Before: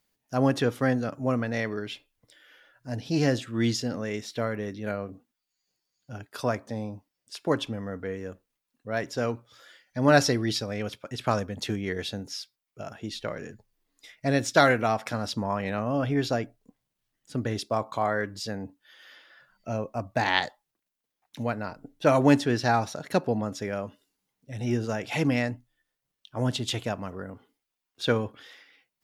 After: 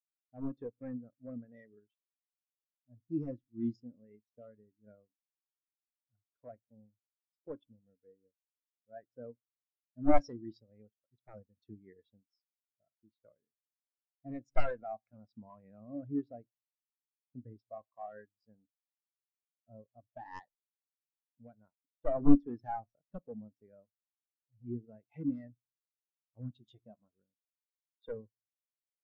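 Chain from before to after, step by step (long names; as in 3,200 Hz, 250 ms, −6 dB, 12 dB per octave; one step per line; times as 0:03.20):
wavefolder on the positive side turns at −18.5 dBFS
power curve on the samples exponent 1.4
0:26.53–0:27.12: double-tracking delay 14 ms −9 dB
on a send at −20.5 dB: convolution reverb RT60 0.60 s, pre-delay 3 ms
on the sum: every bin expanded away from the loudest bin 2.5 to 1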